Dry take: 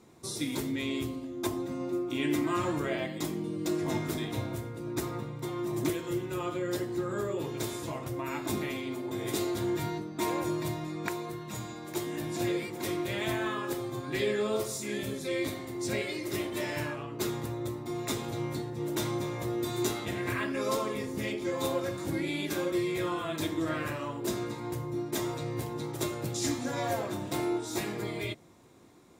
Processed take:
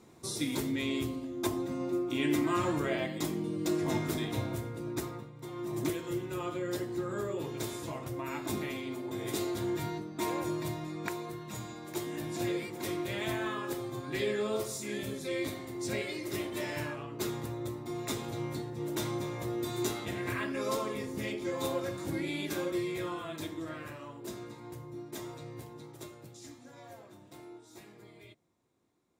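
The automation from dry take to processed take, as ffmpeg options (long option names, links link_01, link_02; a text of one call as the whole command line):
ffmpeg -i in.wav -af "volume=8.5dB,afade=type=out:start_time=4.8:duration=0.52:silence=0.281838,afade=type=in:start_time=5.32:duration=0.46:silence=0.375837,afade=type=out:start_time=22.58:duration=1.18:silence=0.446684,afade=type=out:start_time=25.43:duration=1.04:silence=0.334965" out.wav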